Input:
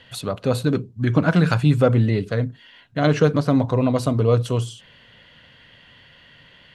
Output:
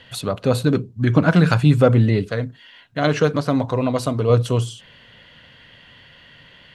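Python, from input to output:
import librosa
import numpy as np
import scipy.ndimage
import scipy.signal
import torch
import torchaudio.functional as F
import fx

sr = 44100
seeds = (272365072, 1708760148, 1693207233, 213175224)

y = fx.low_shelf(x, sr, hz=420.0, db=-6.0, at=(2.26, 4.3))
y = y * librosa.db_to_amplitude(2.5)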